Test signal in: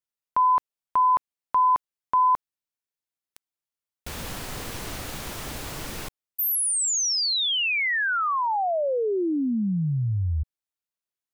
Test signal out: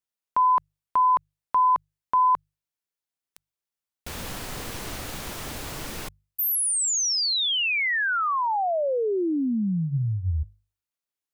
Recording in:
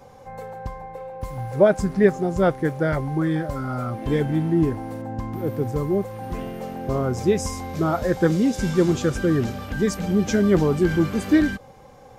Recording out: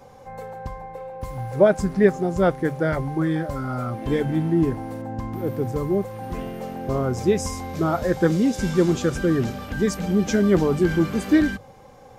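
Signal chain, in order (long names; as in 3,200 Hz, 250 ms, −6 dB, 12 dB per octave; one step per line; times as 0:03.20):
mains-hum notches 50/100/150 Hz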